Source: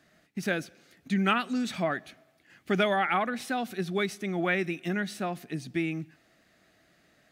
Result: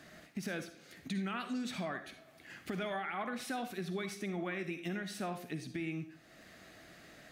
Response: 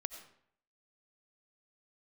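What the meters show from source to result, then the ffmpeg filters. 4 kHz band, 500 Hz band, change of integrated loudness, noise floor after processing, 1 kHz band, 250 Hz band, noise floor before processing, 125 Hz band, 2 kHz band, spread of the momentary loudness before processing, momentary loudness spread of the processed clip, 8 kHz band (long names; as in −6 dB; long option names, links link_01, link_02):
−9.0 dB, −10.5 dB, −10.0 dB, −59 dBFS, −11.0 dB, −8.5 dB, −66 dBFS, −8.0 dB, −10.5 dB, 10 LU, 17 LU, −4.5 dB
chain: -filter_complex "[0:a]alimiter=limit=-22.5dB:level=0:latency=1:release=38,acompressor=threshold=-57dB:ratio=2[link_01];[1:a]atrim=start_sample=2205,asetrate=74970,aresample=44100[link_02];[link_01][link_02]afir=irnorm=-1:irlink=0,volume=14.5dB"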